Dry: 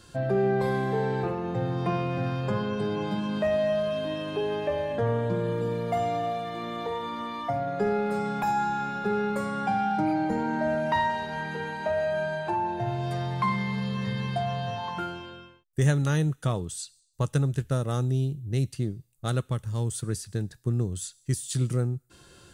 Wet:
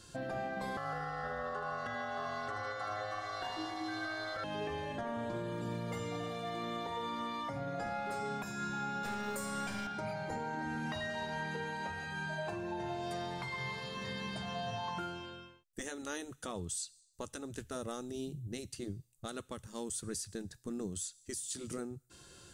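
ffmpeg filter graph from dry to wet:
ffmpeg -i in.wav -filter_complex "[0:a]asettb=1/sr,asplit=3[link_01][link_02][link_03];[link_01]atrim=end=0.774[link_04];[link_02]atrim=start=0.77:end=4.44,asetpts=PTS-STARTPTS,afade=type=in:duration=0.004:curve=qsin,afade=type=out:start_time=3.666:duration=0.004:curve=qsin,asuperstop=centerf=1400:order=20:qfactor=2.3,aeval=exprs='val(0)*sin(2*PI*940*n/s)':channel_layout=same,aecho=1:1:78|156|234|312|390|468|546:0.501|0.286|0.163|0.0928|0.0529|0.0302|0.0172,atrim=end_sample=161847[link_05];[link_03]atrim=start=4.436[link_06];[link_04][link_05]acrossfade=duration=0.004:curve1=hsin:curve2=qsin[link_07];[link_07][link_06]acrossfade=duration=0.004:curve1=qsin:curve2=hsin,asettb=1/sr,asplit=3[link_08][link_09][link_10];[link_08]atrim=end=9.034[link_11];[link_09]atrim=start=9.03:end=9.87,asetpts=PTS-STARTPTS,afade=type=in:duration=0.004:curve=qsin,afade=type=out:start_time=0.836:duration=0.004:curve=qsin,aemphasis=mode=production:type=75fm,aeval=exprs='(tanh(12.6*val(0)+0.3)-tanh(0.3))/12.6':channel_layout=same[link_12];[link_10]atrim=start=9.866[link_13];[link_11][link_12]acrossfade=duration=0.004:curve1=hsin:curve2=qsin[link_14];[link_14][link_13]acrossfade=duration=0.004:curve1=qsin:curve2=hsin,afftfilt=real='re*lt(hypot(re,im),0.251)':imag='im*lt(hypot(re,im),0.251)':win_size=1024:overlap=0.75,equalizer=frequency=6800:width=0.88:gain=6,alimiter=limit=-24dB:level=0:latency=1:release=251,volume=-5dB" out.wav

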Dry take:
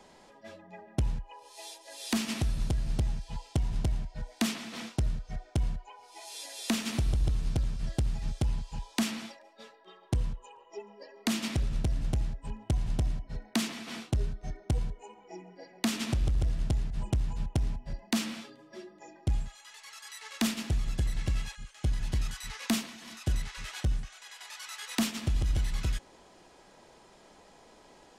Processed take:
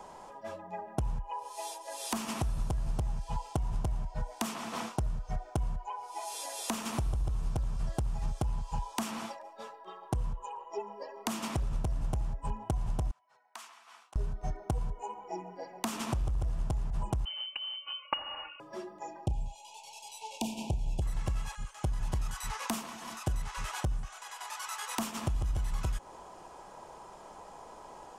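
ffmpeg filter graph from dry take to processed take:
ffmpeg -i in.wav -filter_complex "[0:a]asettb=1/sr,asplit=3[link_01][link_02][link_03];[link_01]atrim=end=13.114[link_04];[link_02]atrim=start=13.11:end=14.16,asetpts=PTS-STARTPTS,afade=type=in:duration=0.004:curve=qsin,afade=type=out:start_time=1.046:duration=0.004:curve=qsin,bandpass=frequency=1100:width_type=q:width=1,aderivative[link_05];[link_03]atrim=start=14.156[link_06];[link_04][link_05]acrossfade=duration=0.004:curve1=hsin:curve2=qsin[link_07];[link_07][link_06]acrossfade=duration=0.004:curve1=qsin:curve2=hsin,asettb=1/sr,asplit=3[link_08][link_09][link_10];[link_08]atrim=end=17.254[link_11];[link_09]atrim=start=17.25:end=18.6,asetpts=PTS-STARTPTS,afade=type=in:duration=0.004:curve=qsin,afade=type=out:start_time=1.346:duration=0.004:curve=qsin,lowpass=frequency=2600:width_type=q:width=0.5098,lowpass=frequency=2600:width_type=q:width=0.6013,lowpass=frequency=2600:width_type=q:width=0.9,lowpass=frequency=2600:width_type=q:width=2.563,afreqshift=-3100,aecho=1:1:3.5:0.68,atrim=end_sample=59535[link_12];[link_10]atrim=start=18.596[link_13];[link_11][link_12]acrossfade=duration=0.004:curve1=hsin:curve2=qsin[link_14];[link_14][link_13]acrossfade=duration=0.004:curve1=qsin:curve2=hsin,asettb=1/sr,asplit=3[link_15][link_16][link_17];[link_15]atrim=end=19.264[link_18];[link_16]atrim=start=19.26:end=21.02,asetpts=PTS-STARTPTS,afade=type=in:duration=0.004:curve=qsin,afade=type=out:start_time=1.756:duration=0.004:curve=qsin,asuperstop=centerf=1500:order=20:qfactor=1.1,highshelf=frequency=9400:gain=-11,asplit=2[link_19][link_20];[link_20]adelay=32,volume=-11dB[link_21];[link_19][link_21]amix=inputs=2:normalize=0,atrim=end_sample=77616[link_22];[link_17]atrim=start=21.016[link_23];[link_18][link_22]acrossfade=duration=0.004:curve1=hsin:curve2=qsin[link_24];[link_24][link_23]acrossfade=duration=0.004:curve1=qsin:curve2=hsin,equalizer=frequency=3000:width_type=o:width=1.8:gain=3.5,acompressor=threshold=-33dB:ratio=6,equalizer=frequency=250:width_type=o:width=1:gain=-5,equalizer=frequency=1000:width_type=o:width=1:gain=9,equalizer=frequency=2000:width_type=o:width=1:gain=-8,equalizer=frequency=4000:width_type=o:width=1:gain=-10,volume=5dB" out.wav

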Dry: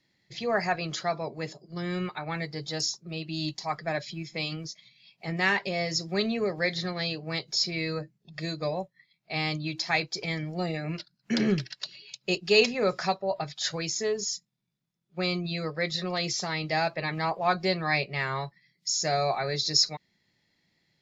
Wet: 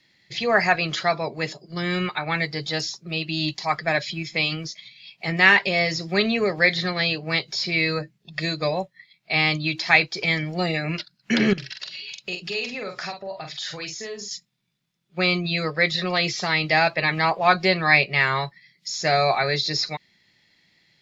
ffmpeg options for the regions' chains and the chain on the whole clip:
ffmpeg -i in.wav -filter_complex "[0:a]asettb=1/sr,asplit=3[link_01][link_02][link_03];[link_01]atrim=end=11.534[link_04];[link_02]atrim=start=11.53:end=14.31,asetpts=PTS-STARTPTS,afade=type=in:duration=0.004:curve=qsin,afade=type=out:start_time=2.776:duration=0.004:curve=qsin,acompressor=threshold=-41dB:ratio=3:attack=3.2:release=140:knee=1:detection=peak,asplit=2[link_05][link_06];[link_06]adelay=45,volume=-6dB[link_07];[link_05][link_07]amix=inputs=2:normalize=0,atrim=end_sample=122598[link_08];[link_03]atrim=start=14.306[link_09];[link_04][link_08]acrossfade=duration=0.004:curve1=hsin:curve2=qsin[link_10];[link_10][link_09]acrossfade=duration=0.004:curve1=qsin:curve2=hsin,acrossover=split=3300[link_11][link_12];[link_12]acompressor=threshold=-41dB:ratio=4:attack=1:release=60[link_13];[link_11][link_13]amix=inputs=2:normalize=0,equalizer=frequency=2800:width_type=o:width=2.2:gain=8,volume=5dB" out.wav

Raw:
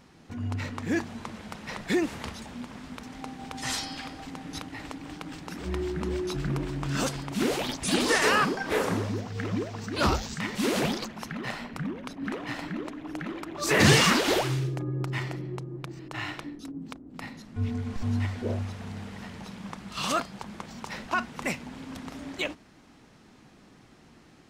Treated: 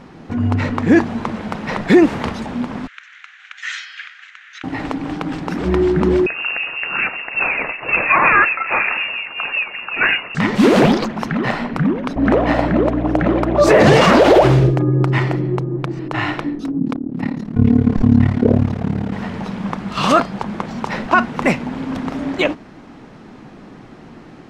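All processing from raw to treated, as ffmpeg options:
ffmpeg -i in.wav -filter_complex "[0:a]asettb=1/sr,asplit=3[link_01][link_02][link_03];[link_01]atrim=end=2.874[link_04];[link_02]atrim=start=2.87:end=4.64,asetpts=PTS-STARTPTS,afade=type=in:duration=0.004:curve=qsin,afade=type=out:start_time=1.766:duration=0.004:curve=qsin,asuperpass=centerf=3300:order=12:qfactor=0.6,equalizer=frequency=4900:width_type=o:width=0.65:gain=-14[link_05];[link_03]atrim=start=4.636[link_06];[link_04][link_05]acrossfade=duration=0.004:curve1=hsin:curve2=qsin[link_07];[link_07][link_06]acrossfade=duration=0.004:curve1=qsin:curve2=hsin,asettb=1/sr,asplit=3[link_08][link_09][link_10];[link_08]atrim=end=6.264[link_11];[link_09]atrim=start=6.26:end=10.35,asetpts=PTS-STARTPTS,afade=type=in:duration=0.004:curve=qsin,afade=type=out:start_time=4.086:duration=0.004:curve=qsin,highpass=frequency=90:poles=1,acrossover=split=1100[link_12][link_13];[link_12]aeval=exprs='val(0)*(1-0.5/2+0.5/2*cos(2*PI*5.4*n/s))':channel_layout=same[link_14];[link_13]aeval=exprs='val(0)*(1-0.5/2-0.5/2*cos(2*PI*5.4*n/s))':channel_layout=same[link_15];[link_14][link_15]amix=inputs=2:normalize=0,lowpass=frequency=2500:width_type=q:width=0.5098,lowpass=frequency=2500:width_type=q:width=0.6013,lowpass=frequency=2500:width_type=q:width=0.9,lowpass=frequency=2500:width_type=q:width=2.563,afreqshift=-2900[link_16];[link_10]atrim=start=10.346[link_17];[link_11][link_16]acrossfade=duration=0.004:curve1=hsin:curve2=qsin[link_18];[link_18][link_17]acrossfade=duration=0.004:curve1=qsin:curve2=hsin,asettb=1/sr,asplit=3[link_19][link_20][link_21];[link_19]atrim=end=12.164[link_22];[link_20]atrim=start=12.16:end=14.71,asetpts=PTS-STARTPTS,afade=type=in:duration=0.004:curve=qsin,afade=type=out:start_time=2.546:duration=0.004:curve=qsin,equalizer=frequency=600:width_type=o:width=0.83:gain=11.5,aeval=exprs='val(0)+0.0178*(sin(2*PI*60*n/s)+sin(2*PI*2*60*n/s)/2+sin(2*PI*3*60*n/s)/3+sin(2*PI*4*60*n/s)/4+sin(2*PI*5*60*n/s)/5)':channel_layout=same[link_23];[link_21]atrim=start=14.706[link_24];[link_22][link_23]acrossfade=duration=0.004:curve1=hsin:curve2=qsin[link_25];[link_25][link_24]acrossfade=duration=0.004:curve1=qsin:curve2=hsin,asettb=1/sr,asplit=3[link_26][link_27][link_28];[link_26]atrim=end=16.794[link_29];[link_27]atrim=start=16.79:end=19.13,asetpts=PTS-STARTPTS,afade=type=in:duration=0.004:curve=qsin,afade=type=out:start_time=2.336:duration=0.004:curve=qsin,tremolo=f=36:d=0.919,equalizer=frequency=210:width_type=o:width=2.5:gain=9[link_30];[link_28]atrim=start=19.126[link_31];[link_29][link_30]acrossfade=duration=0.004:curve1=hsin:curve2=qsin[link_32];[link_32][link_31]acrossfade=duration=0.004:curve1=qsin:curve2=hsin,lowpass=frequency=1300:poles=1,equalizer=frequency=68:width_type=o:width=1.3:gain=-7,alimiter=level_in=18.5dB:limit=-1dB:release=50:level=0:latency=1,volume=-1dB" out.wav

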